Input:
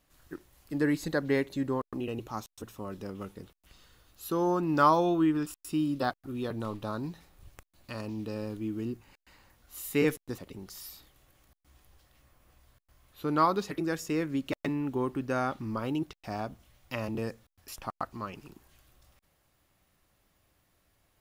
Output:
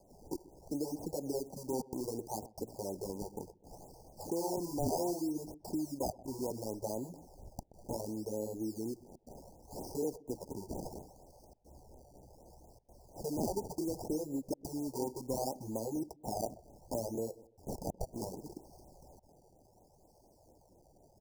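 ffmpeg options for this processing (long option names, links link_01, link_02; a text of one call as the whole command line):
ffmpeg -i in.wav -filter_complex "[0:a]equalizer=frequency=1900:width=0.77:gain=-8,alimiter=limit=-23dB:level=0:latency=1:release=60,acompressor=threshold=-48dB:ratio=3,acrossover=split=340 7900:gain=0.224 1 0.2[link_01][link_02][link_03];[link_01][link_02][link_03]amix=inputs=3:normalize=0,acrusher=samples=23:mix=1:aa=0.000001:lfo=1:lforange=23:lforate=0.68,asuperstop=centerf=2100:order=20:qfactor=0.55,asplit=2[link_04][link_05];[link_05]adelay=126,lowpass=frequency=950:poles=1,volume=-18dB,asplit=2[link_06][link_07];[link_07]adelay=126,lowpass=frequency=950:poles=1,volume=0.34,asplit=2[link_08][link_09];[link_09]adelay=126,lowpass=frequency=950:poles=1,volume=0.34[link_10];[link_04][link_06][link_08][link_10]amix=inputs=4:normalize=0,afftfilt=real='re*(1-between(b*sr/1024,220*pow(4600/220,0.5+0.5*sin(2*PI*4.2*pts/sr))/1.41,220*pow(4600/220,0.5+0.5*sin(2*PI*4.2*pts/sr))*1.41))':imag='im*(1-between(b*sr/1024,220*pow(4600/220,0.5+0.5*sin(2*PI*4.2*pts/sr))/1.41,220*pow(4600/220,0.5+0.5*sin(2*PI*4.2*pts/sr))*1.41))':win_size=1024:overlap=0.75,volume=15dB" out.wav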